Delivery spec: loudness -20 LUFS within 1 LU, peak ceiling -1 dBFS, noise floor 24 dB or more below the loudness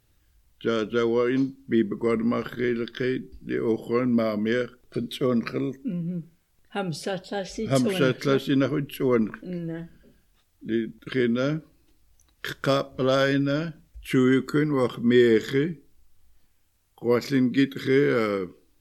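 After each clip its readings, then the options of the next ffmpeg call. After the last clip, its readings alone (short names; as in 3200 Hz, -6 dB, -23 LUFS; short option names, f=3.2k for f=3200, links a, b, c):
loudness -25.0 LUFS; peak -8.0 dBFS; loudness target -20.0 LUFS
-> -af "volume=5dB"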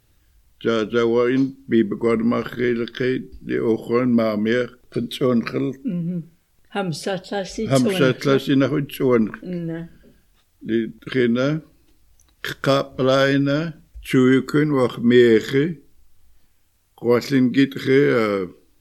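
loudness -20.0 LUFS; peak -3.0 dBFS; noise floor -60 dBFS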